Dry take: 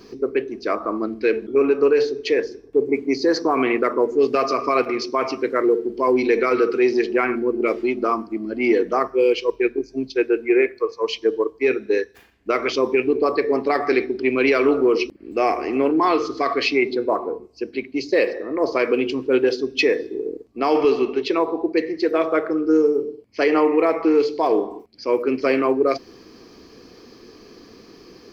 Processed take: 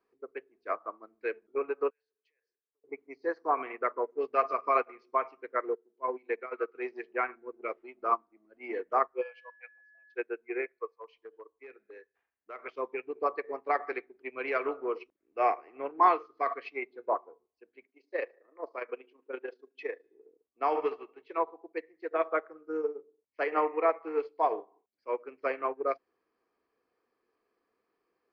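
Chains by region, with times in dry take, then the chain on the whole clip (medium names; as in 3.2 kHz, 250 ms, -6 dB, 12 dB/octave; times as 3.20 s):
1.90–2.84 s: compression 12:1, threshold -27 dBFS + differentiator
5.75–6.75 s: high-pass 150 Hz + gate -19 dBFS, range -6 dB + distance through air 140 m
9.21–10.13 s: brick-wall FIR high-pass 500 Hz + whistle 1.7 kHz -30 dBFS
10.87–12.59 s: compression 3:1, threshold -20 dBFS + overload inside the chain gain 16.5 dB
17.86–20.04 s: high-pass 210 Hz 24 dB/octave + AM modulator 27 Hz, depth 35%
20.77–21.29 s: hard clipper -10 dBFS + comb 6.3 ms, depth 40%
whole clip: three-band isolator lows -18 dB, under 520 Hz, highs -23 dB, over 2.3 kHz; upward expansion 2.5:1, over -35 dBFS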